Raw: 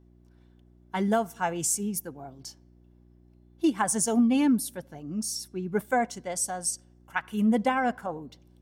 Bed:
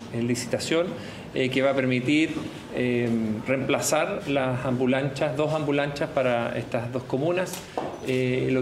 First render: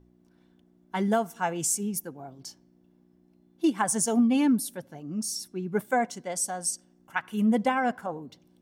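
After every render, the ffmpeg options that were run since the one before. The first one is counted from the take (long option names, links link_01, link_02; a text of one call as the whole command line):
ffmpeg -i in.wav -af "bandreject=frequency=60:width_type=h:width=4,bandreject=frequency=120:width_type=h:width=4" out.wav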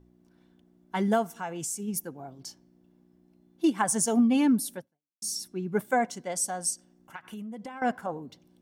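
ffmpeg -i in.wav -filter_complex "[0:a]asplit=3[link_01][link_02][link_03];[link_01]afade=type=out:start_time=1.27:duration=0.02[link_04];[link_02]acompressor=threshold=-35dB:ratio=2:attack=3.2:release=140:knee=1:detection=peak,afade=type=in:start_time=1.27:duration=0.02,afade=type=out:start_time=1.87:duration=0.02[link_05];[link_03]afade=type=in:start_time=1.87:duration=0.02[link_06];[link_04][link_05][link_06]amix=inputs=3:normalize=0,asettb=1/sr,asplit=3[link_07][link_08][link_09];[link_07]atrim=end=6.734[link_10];[link_08]atrim=start=6.73:end=7.82,asetpts=PTS-STARTPTS,afade=type=in:duration=0.004:curve=qsin,afade=type=out:start_time=1.086:duration=0.004:curve=qsin,acompressor=threshold=-36dB:ratio=16:attack=3.2:release=140:knee=1:detection=peak[link_11];[link_09]atrim=start=7.816[link_12];[link_10][link_11]acrossfade=duration=0.004:curve1=hsin:curve2=qsin[link_13];[link_13][link_12]acrossfade=duration=0.004:curve1=qsin:curve2=hsin,asplit=2[link_14][link_15];[link_14]atrim=end=5.22,asetpts=PTS-STARTPTS,afade=type=out:start_time=4.78:duration=0.44:curve=exp[link_16];[link_15]atrim=start=5.22,asetpts=PTS-STARTPTS,afade=type=in:duration=0.004:curve=hsin[link_17];[link_16][link_17]concat=n=2:v=0:a=1" out.wav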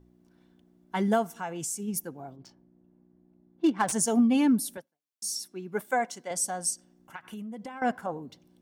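ffmpeg -i in.wav -filter_complex "[0:a]asplit=3[link_01][link_02][link_03];[link_01]afade=type=out:start_time=2.35:duration=0.02[link_04];[link_02]adynamicsmooth=sensitivity=7:basefreq=1600,afade=type=in:start_time=2.35:duration=0.02,afade=type=out:start_time=3.91:duration=0.02[link_05];[link_03]afade=type=in:start_time=3.91:duration=0.02[link_06];[link_04][link_05][link_06]amix=inputs=3:normalize=0,asettb=1/sr,asplit=3[link_07][link_08][link_09];[link_07]atrim=end=4.774[link_10];[link_08]atrim=start=4.77:end=6.31,asetpts=PTS-STARTPTS,afade=type=in:duration=0.004:curve=qsin,afade=type=out:start_time=1.536:duration=0.004:curve=qsin,highpass=frequency=450:poles=1[link_11];[link_09]atrim=start=6.306[link_12];[link_10][link_11]acrossfade=duration=0.004:curve1=hsin:curve2=qsin[link_13];[link_13][link_12]acrossfade=duration=0.004:curve1=qsin:curve2=hsin" out.wav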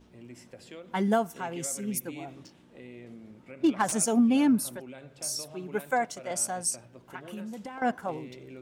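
ffmpeg -i in.wav -i bed.wav -filter_complex "[1:a]volume=-22dB[link_01];[0:a][link_01]amix=inputs=2:normalize=0" out.wav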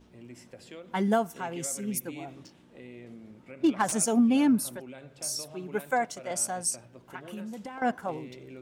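ffmpeg -i in.wav -af anull out.wav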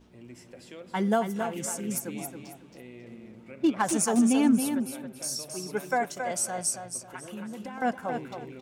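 ffmpeg -i in.wav -af "aecho=1:1:272|544|816:0.447|0.107|0.0257" out.wav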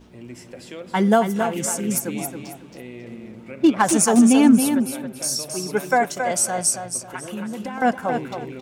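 ffmpeg -i in.wav -af "volume=8.5dB" out.wav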